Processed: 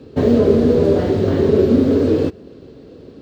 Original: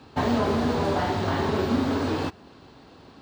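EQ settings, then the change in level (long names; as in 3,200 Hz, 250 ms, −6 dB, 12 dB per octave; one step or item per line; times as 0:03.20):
low shelf with overshoot 640 Hz +9.5 dB, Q 3
−1.0 dB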